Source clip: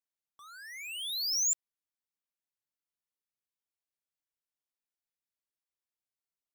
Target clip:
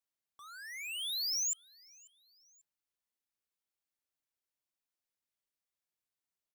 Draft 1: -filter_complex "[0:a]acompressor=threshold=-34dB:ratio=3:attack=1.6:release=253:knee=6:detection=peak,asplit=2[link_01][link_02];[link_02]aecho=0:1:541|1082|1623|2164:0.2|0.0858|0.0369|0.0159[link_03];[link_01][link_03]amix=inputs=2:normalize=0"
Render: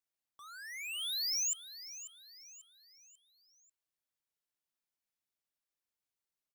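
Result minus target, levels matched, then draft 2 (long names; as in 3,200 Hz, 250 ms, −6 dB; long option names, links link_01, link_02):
echo-to-direct +12 dB
-filter_complex "[0:a]acompressor=threshold=-34dB:ratio=3:attack=1.6:release=253:knee=6:detection=peak,asplit=2[link_01][link_02];[link_02]aecho=0:1:541|1082:0.0501|0.0216[link_03];[link_01][link_03]amix=inputs=2:normalize=0"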